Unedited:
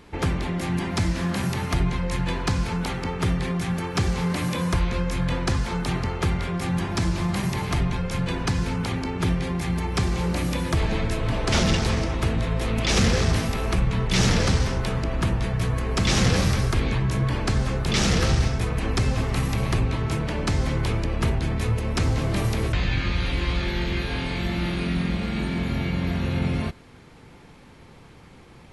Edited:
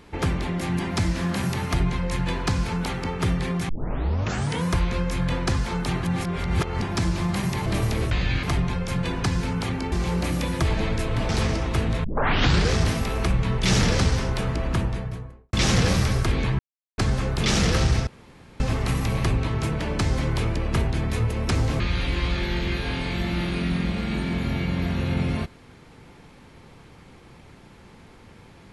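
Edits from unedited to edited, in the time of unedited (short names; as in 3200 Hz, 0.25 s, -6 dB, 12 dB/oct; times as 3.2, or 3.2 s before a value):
3.69 tape start 0.96 s
6.03–6.82 reverse
9.15–10.04 cut
11.41–11.77 cut
12.52 tape start 0.67 s
15.12–16.01 studio fade out
17.07–17.46 mute
18.55–19.08 room tone
22.28–23.05 move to 7.66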